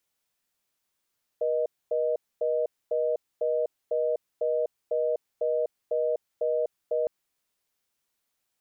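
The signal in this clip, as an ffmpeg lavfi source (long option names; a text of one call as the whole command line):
ffmpeg -f lavfi -i "aevalsrc='0.0501*(sin(2*PI*480*t)+sin(2*PI*620*t))*clip(min(mod(t,0.5),0.25-mod(t,0.5))/0.005,0,1)':duration=5.66:sample_rate=44100" out.wav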